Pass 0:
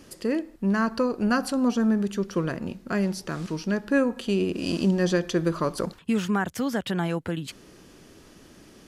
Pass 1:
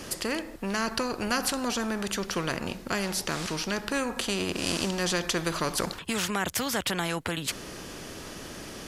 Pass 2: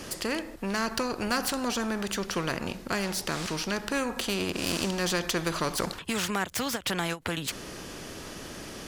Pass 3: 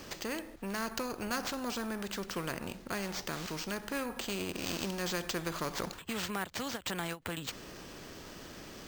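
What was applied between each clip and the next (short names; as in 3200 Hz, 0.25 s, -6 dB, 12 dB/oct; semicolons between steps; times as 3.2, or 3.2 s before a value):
spectral compressor 2:1
self-modulated delay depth 0.05 ms; ending taper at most 320 dB/s
careless resampling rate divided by 4×, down none, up hold; gain -7 dB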